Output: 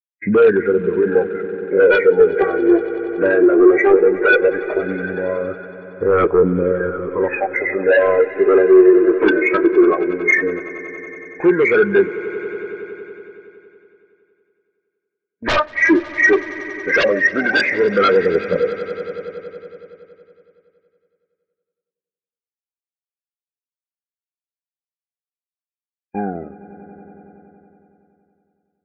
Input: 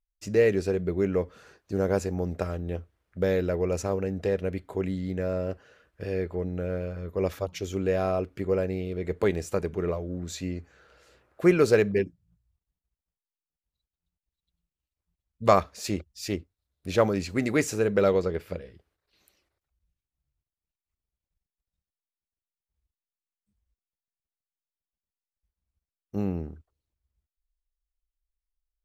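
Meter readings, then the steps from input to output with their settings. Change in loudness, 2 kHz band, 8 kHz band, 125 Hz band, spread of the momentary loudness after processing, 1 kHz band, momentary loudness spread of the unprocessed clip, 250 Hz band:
+12.5 dB, +20.0 dB, no reading, -0.5 dB, 17 LU, +10.5 dB, 13 LU, +12.0 dB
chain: knee-point frequency compression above 1.4 kHz 4:1; high-pass 320 Hz 12 dB/octave; band-stop 630 Hz, Q 12; gate -48 dBFS, range -20 dB; in parallel at +1.5 dB: compression, threshold -35 dBFS, peak gain reduction 19 dB; on the sum: phaser 0.16 Hz, delay 3.3 ms, feedback 75%; sine folder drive 15 dB, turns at -3.5 dBFS; on a send: echo with a slow build-up 93 ms, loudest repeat 5, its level -15 dB; on the sum: spectral contrast expander 1.5:1; trim -3 dB

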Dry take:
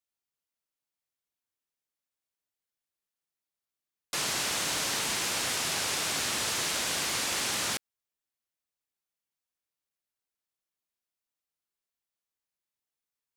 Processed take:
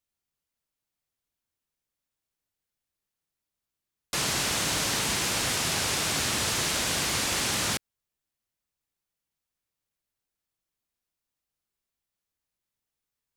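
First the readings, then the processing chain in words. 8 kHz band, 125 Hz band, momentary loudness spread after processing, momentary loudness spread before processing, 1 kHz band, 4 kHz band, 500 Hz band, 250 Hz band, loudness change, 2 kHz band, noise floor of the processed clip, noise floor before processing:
+2.5 dB, +10.0 dB, 2 LU, 2 LU, +3.0 dB, +2.5 dB, +4.0 dB, +6.5 dB, +2.5 dB, +2.5 dB, under -85 dBFS, under -85 dBFS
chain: bass shelf 190 Hz +11 dB; trim +2.5 dB

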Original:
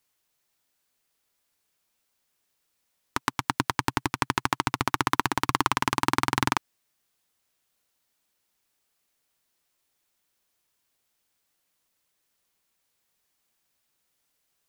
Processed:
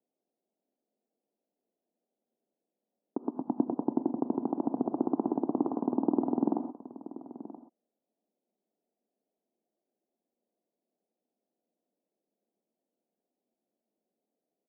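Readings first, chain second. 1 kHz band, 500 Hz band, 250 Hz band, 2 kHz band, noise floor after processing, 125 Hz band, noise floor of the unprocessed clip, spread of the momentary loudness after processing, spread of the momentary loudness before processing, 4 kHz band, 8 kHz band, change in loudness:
-13.0 dB, +3.5 dB, +4.5 dB, under -40 dB, under -85 dBFS, -12.5 dB, -76 dBFS, 16 LU, 5 LU, under -40 dB, under -40 dB, -4.5 dB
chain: elliptic band-pass 210–710 Hz, stop band 50 dB; tilt EQ -2.5 dB/octave; on a send: delay 978 ms -15.5 dB; on the sum: gated-style reverb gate 150 ms rising, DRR 9 dB

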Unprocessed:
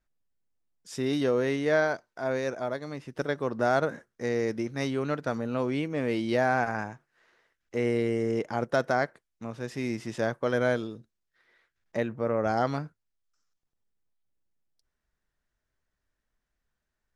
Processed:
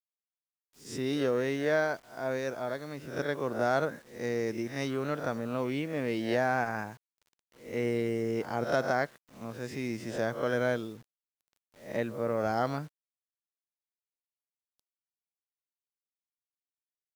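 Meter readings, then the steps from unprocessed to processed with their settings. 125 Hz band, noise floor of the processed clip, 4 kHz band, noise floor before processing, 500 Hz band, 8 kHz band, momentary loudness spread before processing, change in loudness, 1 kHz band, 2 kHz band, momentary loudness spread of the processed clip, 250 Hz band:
-3.0 dB, under -85 dBFS, -2.0 dB, -83 dBFS, -3.0 dB, -1.0 dB, 11 LU, -3.0 dB, -2.5 dB, -2.5 dB, 10 LU, -3.0 dB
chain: reverse spectral sustain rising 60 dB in 0.42 s; bit crusher 9-bit; trim -3.5 dB

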